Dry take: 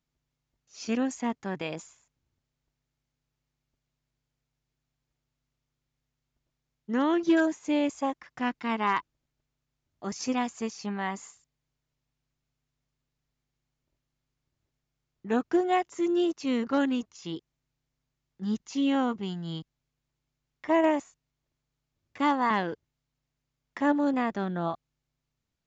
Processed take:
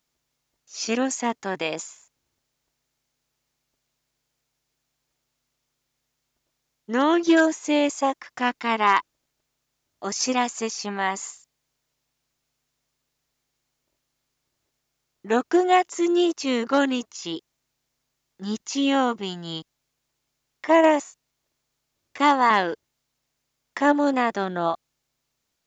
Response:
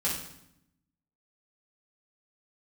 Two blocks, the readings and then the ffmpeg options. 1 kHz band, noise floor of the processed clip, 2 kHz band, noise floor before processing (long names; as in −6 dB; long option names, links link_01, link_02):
+8.0 dB, −79 dBFS, +8.0 dB, −85 dBFS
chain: -af "bass=frequency=250:gain=-12,treble=frequency=4000:gain=5,volume=8dB"